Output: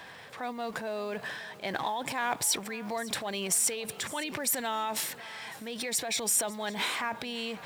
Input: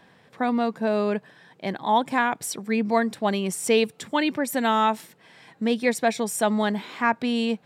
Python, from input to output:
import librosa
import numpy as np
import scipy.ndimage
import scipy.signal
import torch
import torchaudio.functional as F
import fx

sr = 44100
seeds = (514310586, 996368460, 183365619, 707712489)

y = fx.law_mismatch(x, sr, coded='mu')
y = fx.dynamic_eq(y, sr, hz=1400.0, q=0.9, threshold_db=-31.0, ratio=4.0, max_db=-4)
y = fx.over_compress(y, sr, threshold_db=-27.0, ratio=-1.0)
y = fx.transient(y, sr, attack_db=-4, sustain_db=6)
y = scipy.signal.sosfilt(scipy.signal.butter(2, 53.0, 'highpass', fs=sr, output='sos'), y)
y = fx.peak_eq(y, sr, hz=210.0, db=-13.0, octaves=2.2)
y = y + 10.0 ** (-19.0 / 20.0) * np.pad(y, (int(554 * sr / 1000.0), 0))[:len(y)]